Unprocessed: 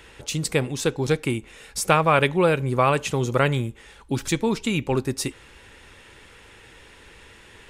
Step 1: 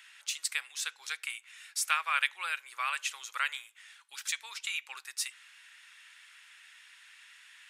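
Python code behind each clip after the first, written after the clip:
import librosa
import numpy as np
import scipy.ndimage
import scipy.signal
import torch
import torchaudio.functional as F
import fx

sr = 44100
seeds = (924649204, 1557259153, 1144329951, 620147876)

y = scipy.signal.sosfilt(scipy.signal.butter(4, 1400.0, 'highpass', fs=sr, output='sos'), x)
y = y * librosa.db_to_amplitude(-4.5)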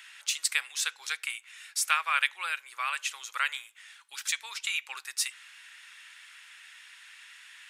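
y = fx.rider(x, sr, range_db=10, speed_s=2.0)
y = y * librosa.db_to_amplitude(2.5)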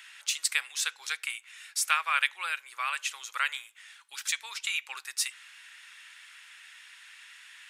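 y = x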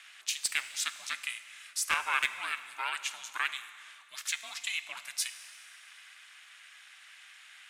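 y = x * np.sin(2.0 * np.pi * 210.0 * np.arange(len(x)) / sr)
y = np.clip(10.0 ** (16.0 / 20.0) * y, -1.0, 1.0) / 10.0 ** (16.0 / 20.0)
y = fx.rev_schroeder(y, sr, rt60_s=2.2, comb_ms=32, drr_db=12.0)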